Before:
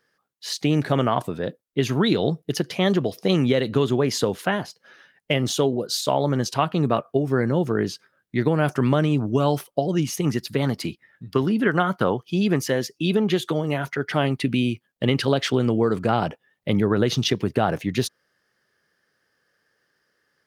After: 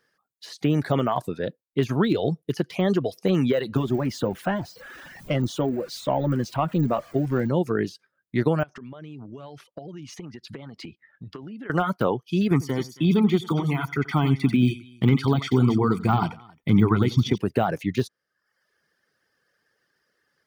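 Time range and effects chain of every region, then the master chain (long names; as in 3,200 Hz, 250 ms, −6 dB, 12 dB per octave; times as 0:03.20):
0:03.76–0:07.48: converter with a step at zero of −31 dBFS + notch filter 430 Hz, Q 5.6
0:08.63–0:11.70: low-pass filter 4,900 Hz + downward compressor 20 to 1, threshold −33 dBFS
0:12.51–0:17.38: comb filter 0.9 ms, depth 88% + multi-tap delay 88/270 ms −9/−18.5 dB
whole clip: de-essing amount 100%; reverb reduction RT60 0.7 s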